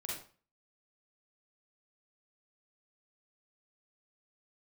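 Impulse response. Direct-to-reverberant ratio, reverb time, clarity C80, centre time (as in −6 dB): −5.0 dB, 0.40 s, 7.0 dB, 51 ms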